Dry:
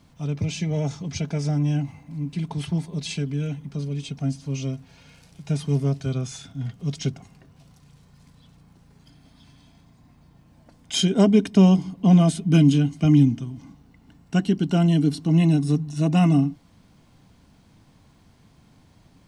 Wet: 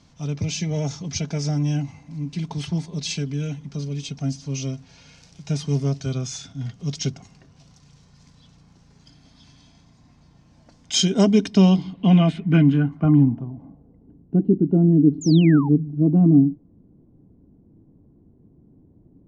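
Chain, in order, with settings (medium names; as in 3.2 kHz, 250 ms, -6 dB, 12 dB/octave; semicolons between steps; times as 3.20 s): low-pass sweep 6 kHz -> 360 Hz, 11.39–14.25 s; painted sound fall, 15.21–15.69 s, 770–7400 Hz -34 dBFS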